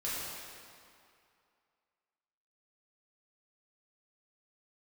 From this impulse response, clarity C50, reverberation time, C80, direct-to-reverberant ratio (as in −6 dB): −3.0 dB, 2.4 s, −1.0 dB, −9.5 dB